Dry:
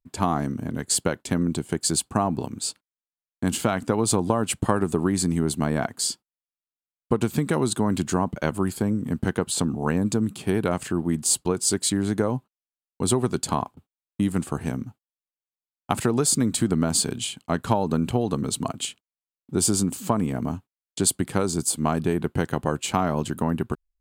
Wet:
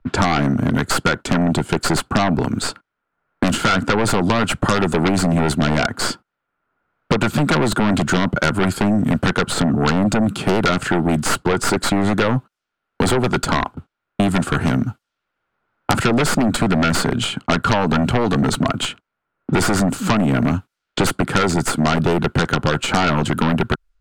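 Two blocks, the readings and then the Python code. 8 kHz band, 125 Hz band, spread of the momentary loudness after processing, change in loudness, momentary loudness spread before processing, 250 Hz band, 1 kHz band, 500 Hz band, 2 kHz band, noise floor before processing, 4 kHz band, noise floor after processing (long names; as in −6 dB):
−2.0 dB, +7.0 dB, 5 LU, +6.0 dB, 8 LU, +6.5 dB, +8.5 dB, +5.5 dB, +14.0 dB, below −85 dBFS, +7.5 dB, −80 dBFS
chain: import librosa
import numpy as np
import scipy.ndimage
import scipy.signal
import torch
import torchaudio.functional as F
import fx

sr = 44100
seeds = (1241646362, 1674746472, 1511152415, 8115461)

p1 = fx.tracing_dist(x, sr, depth_ms=0.041)
p2 = fx.lowpass(p1, sr, hz=2400.0, slope=6)
p3 = fx.peak_eq(p2, sr, hz=1400.0, db=12.5, octaves=0.25)
p4 = fx.fold_sine(p3, sr, drive_db=19, ceiling_db=-2.5)
p5 = p3 + F.gain(torch.from_numpy(p4), -10.5).numpy()
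p6 = fx.env_lowpass(p5, sr, base_hz=1600.0, full_db=-21.5)
p7 = fx.band_squash(p6, sr, depth_pct=70)
y = F.gain(torch.from_numpy(p7), -2.0).numpy()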